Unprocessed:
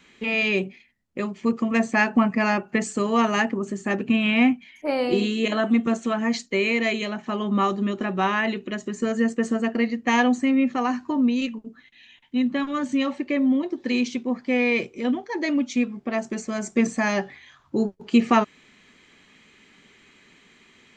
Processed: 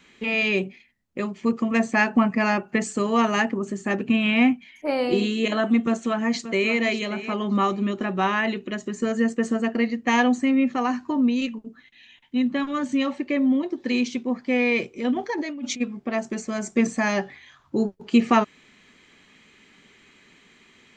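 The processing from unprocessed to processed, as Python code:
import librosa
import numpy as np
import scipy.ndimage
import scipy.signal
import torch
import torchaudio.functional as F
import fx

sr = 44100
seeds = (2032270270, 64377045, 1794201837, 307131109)

y = fx.echo_throw(x, sr, start_s=5.77, length_s=0.98, ms=580, feedback_pct=15, wet_db=-12.5)
y = fx.over_compress(y, sr, threshold_db=-31.0, ratio=-1.0, at=(15.13, 15.8), fade=0.02)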